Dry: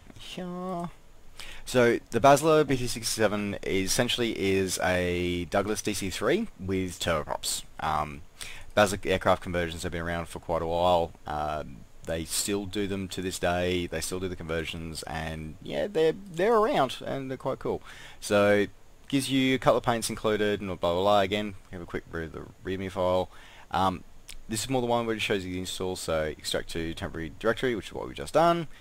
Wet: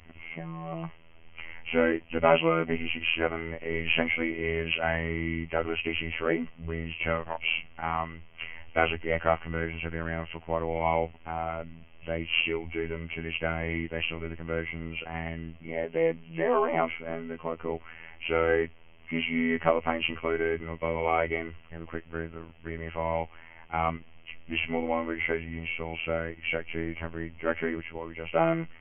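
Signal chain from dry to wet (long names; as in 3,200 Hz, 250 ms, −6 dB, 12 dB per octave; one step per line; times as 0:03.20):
hearing-aid frequency compression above 1,900 Hz 4 to 1
phases set to zero 82.2 Hz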